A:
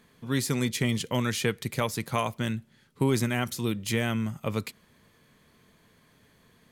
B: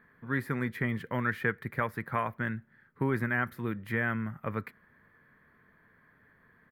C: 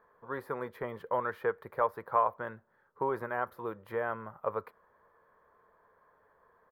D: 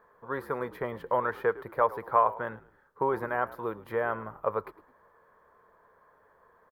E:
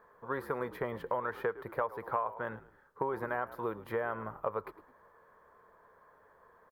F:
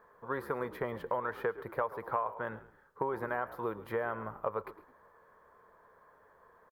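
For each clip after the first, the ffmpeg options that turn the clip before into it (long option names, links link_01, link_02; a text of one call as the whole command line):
ffmpeg -i in.wav -af "firequalizer=gain_entry='entry(720,0);entry(1700,12);entry(2700,-11);entry(6500,-27);entry(14000,-6)':delay=0.05:min_phase=1,volume=-5dB" out.wav
ffmpeg -i in.wav -af "equalizer=frequency=125:width_type=o:width=1:gain=-9,equalizer=frequency=250:width_type=o:width=1:gain=-10,equalizer=frequency=500:width_type=o:width=1:gain=12,equalizer=frequency=1000:width_type=o:width=1:gain=12,equalizer=frequency=2000:width_type=o:width=1:gain=-11,equalizer=frequency=8000:width_type=o:width=1:gain=-6,volume=-5.5dB" out.wav
ffmpeg -i in.wav -filter_complex "[0:a]asplit=4[link_01][link_02][link_03][link_04];[link_02]adelay=107,afreqshift=-62,volume=-18dB[link_05];[link_03]adelay=214,afreqshift=-124,volume=-27.6dB[link_06];[link_04]adelay=321,afreqshift=-186,volume=-37.3dB[link_07];[link_01][link_05][link_06][link_07]amix=inputs=4:normalize=0,volume=4dB" out.wav
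ffmpeg -i in.wav -af "acompressor=threshold=-30dB:ratio=5" out.wav
ffmpeg -i in.wav -af "aecho=1:1:137:0.0944" out.wav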